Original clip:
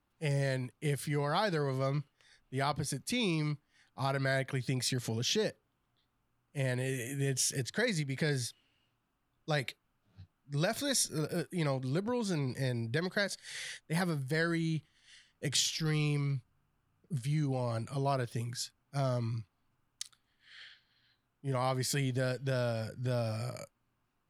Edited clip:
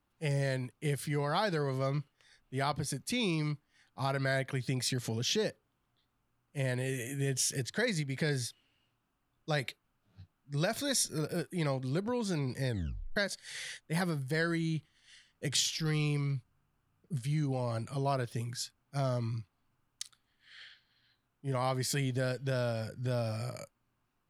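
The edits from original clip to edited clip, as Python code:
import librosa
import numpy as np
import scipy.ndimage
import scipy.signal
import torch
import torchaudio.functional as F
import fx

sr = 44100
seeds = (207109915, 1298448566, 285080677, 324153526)

y = fx.edit(x, sr, fx.tape_stop(start_s=12.69, length_s=0.47), tone=tone)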